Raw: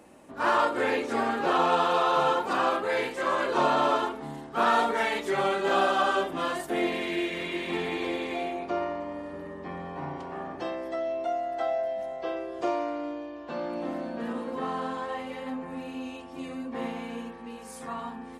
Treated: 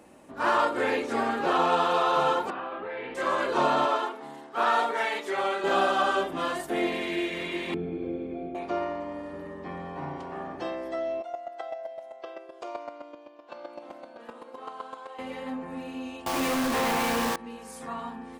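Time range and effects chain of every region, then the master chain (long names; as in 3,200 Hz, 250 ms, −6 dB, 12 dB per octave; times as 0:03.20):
0:02.50–0:03.15: low-pass filter 3,100 Hz 24 dB per octave + downward compressor, threshold −32 dBFS
0:03.85–0:05.64: Bessel high-pass filter 420 Hz + high-shelf EQ 5,300 Hz −4 dB
0:07.74–0:08.55: moving average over 46 samples + parametric band 120 Hz +7.5 dB 1.6 octaves
0:11.21–0:15.19: high-pass filter 460 Hz + notch filter 1,800 Hz, Q 10 + square-wave tremolo 7.8 Hz, depth 65%, duty 10%
0:16.26–0:17.36: high-pass filter 110 Hz + parametric band 1,200 Hz +12.5 dB 2.5 octaves + log-companded quantiser 2 bits
whole clip: no processing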